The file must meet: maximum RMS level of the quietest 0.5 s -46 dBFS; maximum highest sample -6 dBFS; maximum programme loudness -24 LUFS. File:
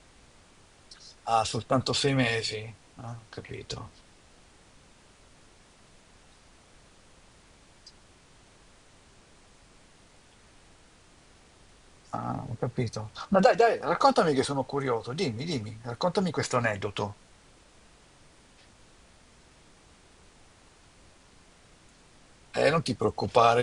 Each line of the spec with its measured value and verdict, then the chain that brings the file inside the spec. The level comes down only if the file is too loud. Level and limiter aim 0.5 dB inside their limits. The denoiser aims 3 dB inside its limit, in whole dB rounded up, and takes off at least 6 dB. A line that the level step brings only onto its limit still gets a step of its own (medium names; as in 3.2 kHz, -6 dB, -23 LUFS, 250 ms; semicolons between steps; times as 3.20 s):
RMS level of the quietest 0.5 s -57 dBFS: pass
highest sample -7.0 dBFS: pass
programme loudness -27.5 LUFS: pass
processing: none needed